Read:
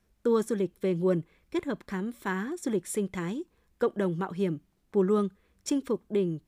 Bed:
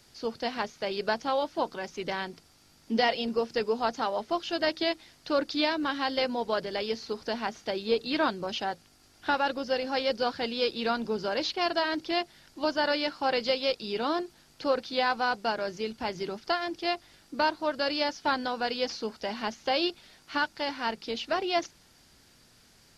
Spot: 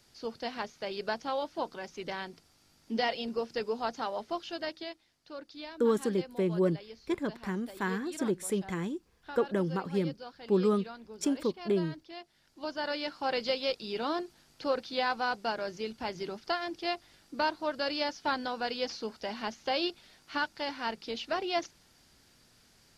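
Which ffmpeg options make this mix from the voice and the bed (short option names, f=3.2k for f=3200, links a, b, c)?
-filter_complex "[0:a]adelay=5550,volume=-1.5dB[a];[1:a]volume=8.5dB,afade=t=out:st=4.28:d=0.73:silence=0.251189,afade=t=in:st=12.19:d=1.21:silence=0.211349[b];[a][b]amix=inputs=2:normalize=0"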